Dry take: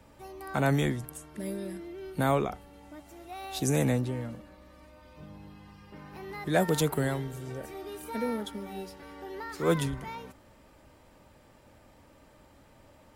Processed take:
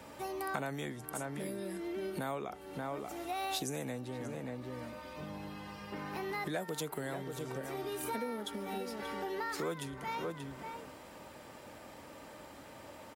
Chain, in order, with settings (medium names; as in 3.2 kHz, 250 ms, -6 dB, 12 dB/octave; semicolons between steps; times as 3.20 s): echo from a far wall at 100 m, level -12 dB; compression 8:1, threshold -42 dBFS, peak gain reduction 21.5 dB; high-pass 280 Hz 6 dB/octave; trim +8.5 dB